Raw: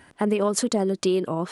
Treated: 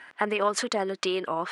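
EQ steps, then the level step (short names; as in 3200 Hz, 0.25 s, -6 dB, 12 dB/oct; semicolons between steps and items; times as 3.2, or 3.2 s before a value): band-pass 1800 Hz, Q 1.1; +8.0 dB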